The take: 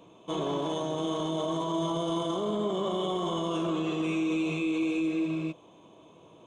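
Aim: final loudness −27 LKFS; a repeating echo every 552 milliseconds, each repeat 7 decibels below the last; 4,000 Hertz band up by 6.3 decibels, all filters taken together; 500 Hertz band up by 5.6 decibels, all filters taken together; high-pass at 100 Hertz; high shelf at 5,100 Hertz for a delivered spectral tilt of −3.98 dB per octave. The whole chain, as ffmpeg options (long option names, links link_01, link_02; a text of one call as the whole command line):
ffmpeg -i in.wav -af "highpass=100,equalizer=frequency=500:width_type=o:gain=7.5,equalizer=frequency=4000:width_type=o:gain=5.5,highshelf=frequency=5100:gain=6.5,aecho=1:1:552|1104|1656|2208|2760:0.447|0.201|0.0905|0.0407|0.0183,volume=-1dB" out.wav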